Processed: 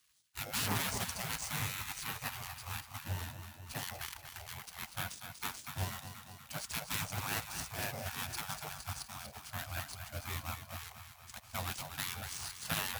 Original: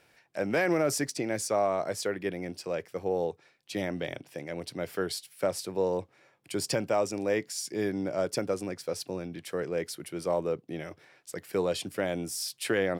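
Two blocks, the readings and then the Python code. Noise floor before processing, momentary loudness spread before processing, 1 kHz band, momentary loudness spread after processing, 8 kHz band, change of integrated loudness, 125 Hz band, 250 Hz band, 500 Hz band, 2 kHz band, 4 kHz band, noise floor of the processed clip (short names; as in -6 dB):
-65 dBFS, 10 LU, -6.0 dB, 10 LU, -3.0 dB, -8.0 dB, -2.0 dB, -15.5 dB, -22.0 dB, -4.0 dB, -1.5 dB, -56 dBFS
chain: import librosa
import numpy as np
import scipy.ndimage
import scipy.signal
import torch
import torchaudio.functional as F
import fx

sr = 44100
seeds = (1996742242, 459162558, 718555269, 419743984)

p1 = scipy.ndimage.median_filter(x, 25, mode='constant')
p2 = fx.peak_eq(p1, sr, hz=310.0, db=10.0, octaves=0.99)
p3 = p2 + fx.echo_feedback(p2, sr, ms=240, feedback_pct=60, wet_db=-9.0, dry=0)
p4 = fx.spec_gate(p3, sr, threshold_db=-25, keep='weak')
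p5 = np.repeat(p4[::3], 3)[:len(p4)]
p6 = scipy.signal.sosfilt(scipy.signal.butter(2, 65.0, 'highpass', fs=sr, output='sos'), p5)
p7 = fx.bass_treble(p6, sr, bass_db=14, treble_db=12)
p8 = fx.doppler_dist(p7, sr, depth_ms=0.46)
y = p8 * 10.0 ** (3.0 / 20.0)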